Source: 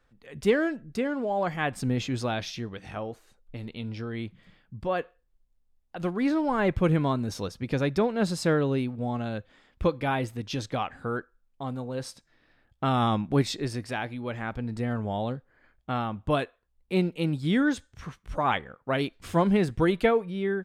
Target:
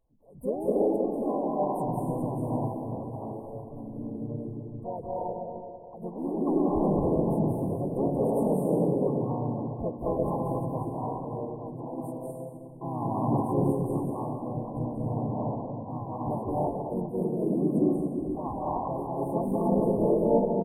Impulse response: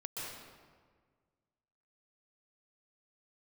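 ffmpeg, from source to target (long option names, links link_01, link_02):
-filter_complex "[1:a]atrim=start_sample=2205,asetrate=29106,aresample=44100[link_01];[0:a][link_01]afir=irnorm=-1:irlink=0,afftfilt=real='re*(1-between(b*sr/4096,880,8500))':imag='im*(1-between(b*sr/4096,880,8500))':win_size=4096:overlap=0.75,asplit=4[link_02][link_03][link_04][link_05];[link_03]asetrate=37084,aresample=44100,atempo=1.18921,volume=-14dB[link_06];[link_04]asetrate=55563,aresample=44100,atempo=0.793701,volume=-3dB[link_07];[link_05]asetrate=58866,aresample=44100,atempo=0.749154,volume=-11dB[link_08];[link_02][link_06][link_07][link_08]amix=inputs=4:normalize=0,volume=-6.5dB"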